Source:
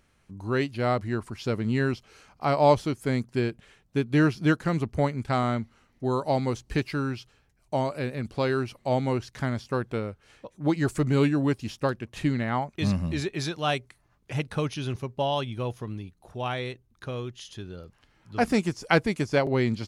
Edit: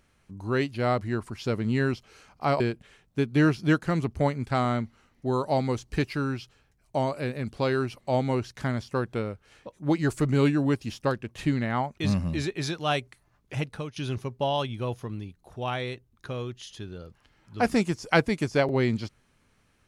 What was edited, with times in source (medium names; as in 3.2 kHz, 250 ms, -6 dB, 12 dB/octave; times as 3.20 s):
2.60–3.38 s: delete
14.34–14.74 s: fade out, to -16 dB